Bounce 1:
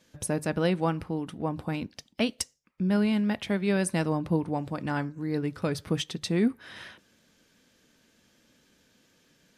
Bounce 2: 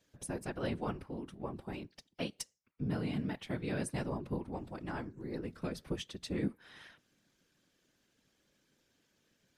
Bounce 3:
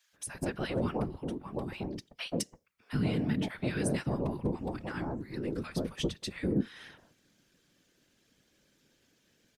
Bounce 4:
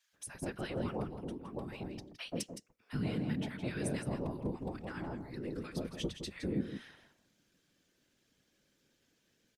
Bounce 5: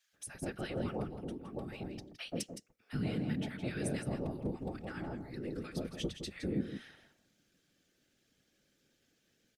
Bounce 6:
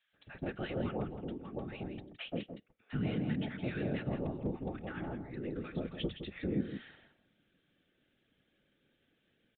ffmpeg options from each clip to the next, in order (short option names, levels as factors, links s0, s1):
-af "afftfilt=real='hypot(re,im)*cos(2*PI*random(0))':imag='hypot(re,im)*sin(2*PI*random(1))':win_size=512:overlap=0.75,volume=0.596"
-filter_complex "[0:a]acrossover=split=1000[s0][s1];[s0]adelay=130[s2];[s2][s1]amix=inputs=2:normalize=0,volume=1.88"
-af "aecho=1:1:165:0.335,volume=0.531"
-af "bandreject=f=1000:w=5.9"
-af "aresample=8000,aresample=44100,volume=1.12"